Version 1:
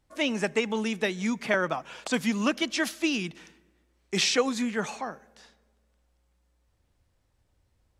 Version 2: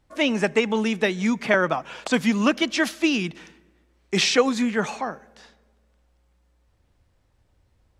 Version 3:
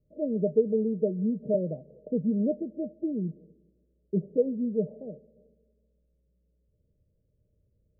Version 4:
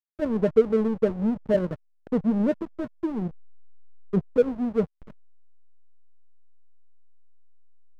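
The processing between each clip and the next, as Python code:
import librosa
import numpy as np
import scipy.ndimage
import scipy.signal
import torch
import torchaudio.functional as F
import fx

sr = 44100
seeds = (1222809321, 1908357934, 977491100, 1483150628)

y1 = fx.high_shelf(x, sr, hz=5500.0, db=-7.0)
y1 = y1 * 10.0 ** (6.0 / 20.0)
y2 = scipy.signal.sosfilt(scipy.signal.cheby1(6, 9, 630.0, 'lowpass', fs=sr, output='sos'), y1)
y3 = fx.backlash(y2, sr, play_db=-27.5)
y3 = y3 * 10.0 ** (5.0 / 20.0)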